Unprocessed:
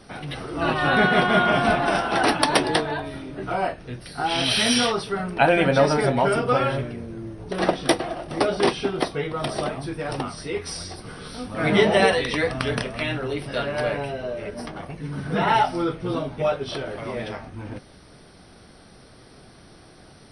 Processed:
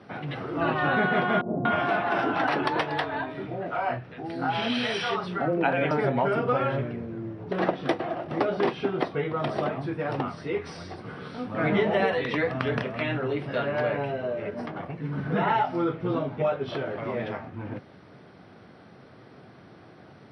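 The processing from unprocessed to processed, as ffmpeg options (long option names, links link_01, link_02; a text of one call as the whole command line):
ffmpeg -i in.wav -filter_complex "[0:a]asettb=1/sr,asplit=3[link_01][link_02][link_03];[link_01]atrim=end=1.414[link_04];[link_02]atrim=start=1.41:end=5.91,asetpts=PTS-STARTPTS,afade=type=in:duration=0.004:curve=qsin,afade=type=out:start_time=4.496:duration=0.004:curve=qsin,acrossover=split=170|530[link_05][link_06][link_07];[link_05]adelay=40[link_08];[link_07]adelay=240[link_09];[link_08][link_06][link_09]amix=inputs=3:normalize=0,atrim=end_sample=198450[link_10];[link_03]atrim=start=5.906[link_11];[link_04][link_10]acrossfade=duration=0.004:curve1=hsin:curve2=qsin[link_12];[link_12][link_11]acrossfade=duration=0.004:curve1=qsin:curve2=hsin,highpass=frequency=96:width=0.5412,highpass=frequency=96:width=1.3066,acompressor=threshold=-22dB:ratio=2.5,lowpass=2400" out.wav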